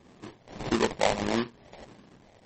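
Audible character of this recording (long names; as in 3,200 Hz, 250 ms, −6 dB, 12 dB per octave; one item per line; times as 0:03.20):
phaser sweep stages 12, 1.6 Hz, lowest notch 290–1,500 Hz
aliases and images of a low sample rate 1,400 Hz, jitter 20%
MP3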